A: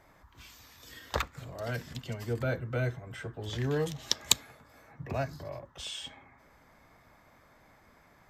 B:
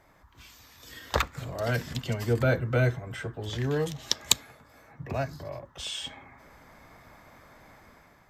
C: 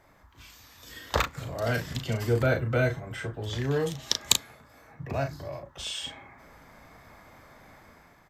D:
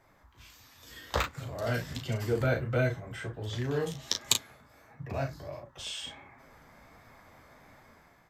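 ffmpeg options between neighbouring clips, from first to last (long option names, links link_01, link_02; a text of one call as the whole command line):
ffmpeg -i in.wav -af "dynaudnorm=framelen=710:gausssize=3:maxgain=7.5dB" out.wav
ffmpeg -i in.wav -filter_complex "[0:a]asplit=2[link_01][link_02];[link_02]adelay=36,volume=-6.5dB[link_03];[link_01][link_03]amix=inputs=2:normalize=0" out.wav
ffmpeg -i in.wav -af "flanger=delay=7.4:depth=9.3:regen=-29:speed=1.4:shape=sinusoidal" out.wav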